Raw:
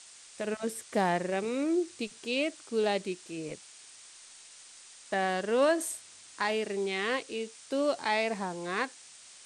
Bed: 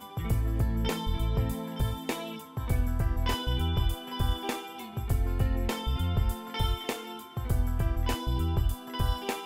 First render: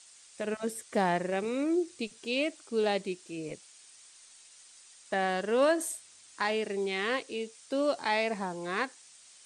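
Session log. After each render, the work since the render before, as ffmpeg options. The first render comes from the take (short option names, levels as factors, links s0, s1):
-af "afftdn=nr=6:nf=-53"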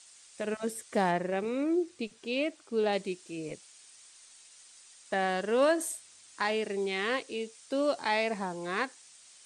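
-filter_complex "[0:a]asettb=1/sr,asplit=3[s0][s1][s2];[s0]atrim=end=1.114[s3];[s1]atrim=start=1.11:end=2.93,asetpts=PTS-STARTPTS,afade=t=in:d=0.004:c=qsin,afade=t=out:st=1.816:d=0.004:c=qsin,highshelf=f=4100:g=-8[s4];[s2]atrim=start=2.926[s5];[s3][s4]acrossfade=d=0.004:c1=hsin:c2=qsin[s6];[s6][s5]acrossfade=d=0.004:c1=qsin:c2=hsin"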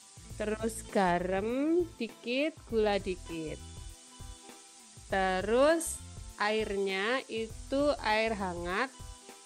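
-filter_complex "[1:a]volume=0.106[s0];[0:a][s0]amix=inputs=2:normalize=0"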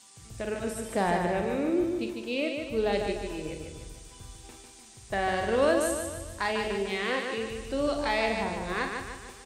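-filter_complex "[0:a]asplit=2[s0][s1];[s1]adelay=45,volume=0.398[s2];[s0][s2]amix=inputs=2:normalize=0,aecho=1:1:149|298|447|596|745|894:0.562|0.276|0.135|0.0662|0.0324|0.0159"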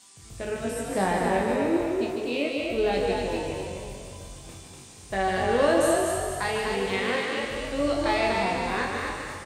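-filter_complex "[0:a]asplit=2[s0][s1];[s1]adelay=21,volume=0.631[s2];[s0][s2]amix=inputs=2:normalize=0,asplit=7[s3][s4][s5][s6][s7][s8][s9];[s4]adelay=244,afreqshift=46,volume=0.631[s10];[s5]adelay=488,afreqshift=92,volume=0.285[s11];[s6]adelay=732,afreqshift=138,volume=0.127[s12];[s7]adelay=976,afreqshift=184,volume=0.0575[s13];[s8]adelay=1220,afreqshift=230,volume=0.026[s14];[s9]adelay=1464,afreqshift=276,volume=0.0116[s15];[s3][s10][s11][s12][s13][s14][s15]amix=inputs=7:normalize=0"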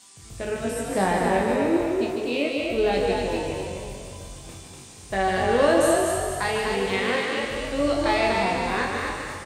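-af "volume=1.33"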